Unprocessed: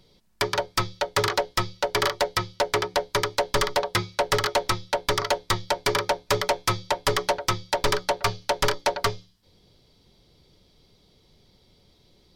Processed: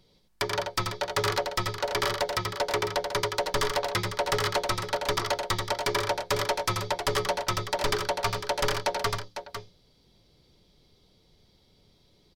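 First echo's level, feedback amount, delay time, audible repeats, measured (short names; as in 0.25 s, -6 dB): -5.5 dB, no steady repeat, 84 ms, 2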